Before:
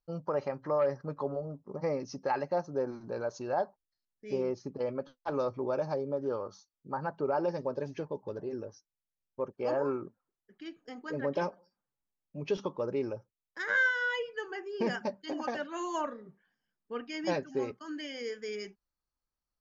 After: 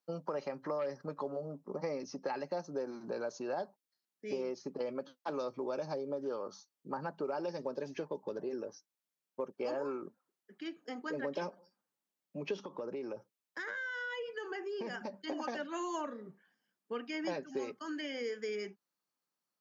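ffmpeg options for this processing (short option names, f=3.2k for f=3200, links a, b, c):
-filter_complex "[0:a]asettb=1/sr,asplit=3[a][b][c];[a]atrim=end=12.614[d];[b]atrim=start=12.61:end=15.14,asetpts=PTS-STARTPTS,afade=t=in:d=0.004:c=qsin,afade=t=out:st=2.526:d=0.004:c=qsin,acompressor=threshold=-38dB:ratio=6:attack=3.2:release=140:knee=1:detection=peak[e];[c]atrim=start=15.136[f];[d][e]acrossfade=d=0.004:c1=hsin:c2=qsin[g];[g][f]acrossfade=d=0.004:c1=qsin:c2=hsin,highpass=f=170:w=0.5412,highpass=f=170:w=1.3066,acrossover=split=390|2500[h][i][j];[h]acompressor=threshold=-46dB:ratio=4[k];[i]acompressor=threshold=-42dB:ratio=4[l];[j]acompressor=threshold=-54dB:ratio=4[m];[k][l][m]amix=inputs=3:normalize=0,volume=3dB"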